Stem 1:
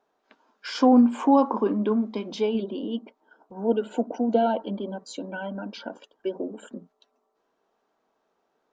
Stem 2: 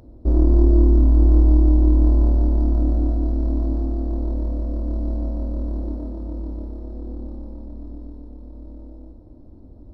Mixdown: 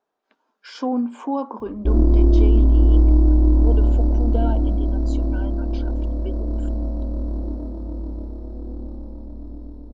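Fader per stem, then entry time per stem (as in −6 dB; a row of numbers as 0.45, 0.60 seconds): −6.0, 0.0 decibels; 0.00, 1.60 seconds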